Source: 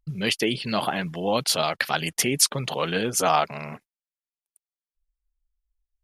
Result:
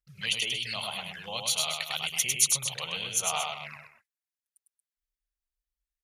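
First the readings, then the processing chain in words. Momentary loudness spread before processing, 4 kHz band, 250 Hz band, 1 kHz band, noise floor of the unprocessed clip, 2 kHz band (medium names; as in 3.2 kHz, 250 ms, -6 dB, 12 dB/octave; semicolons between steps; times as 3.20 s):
7 LU, -2.0 dB, -21.0 dB, -11.5 dB, under -85 dBFS, -5.0 dB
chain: peaking EQ 1.7 kHz +7.5 dB 0.67 oct; on a send: loudspeakers at several distances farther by 35 m -3 dB, 79 m -11 dB; on the sum: touch-sensitive flanger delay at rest 5.6 ms, full sweep at -20 dBFS; high-pass 43 Hz; amplifier tone stack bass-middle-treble 10-0-10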